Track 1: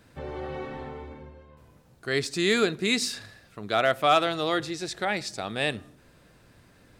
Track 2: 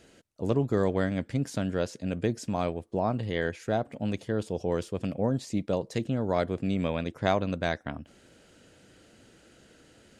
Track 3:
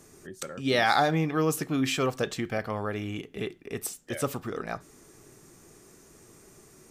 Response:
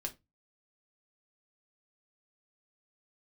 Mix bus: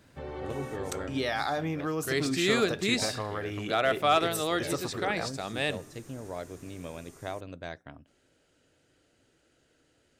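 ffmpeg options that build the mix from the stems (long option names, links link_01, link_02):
-filter_complex "[0:a]volume=-3dB[link_01];[1:a]volume=-11.5dB,asplit=2[link_02][link_03];[link_03]volume=-15.5dB[link_04];[2:a]adelay=500,volume=-0.5dB,asplit=2[link_05][link_06];[link_06]volume=-16.5dB[link_07];[link_02][link_05]amix=inputs=2:normalize=0,equalizer=frequency=200:width_type=o:width=0.24:gain=-14,acompressor=threshold=-31dB:ratio=4,volume=0dB[link_08];[3:a]atrim=start_sample=2205[link_09];[link_04][link_07]amix=inputs=2:normalize=0[link_10];[link_10][link_09]afir=irnorm=-1:irlink=0[link_11];[link_01][link_08][link_11]amix=inputs=3:normalize=0"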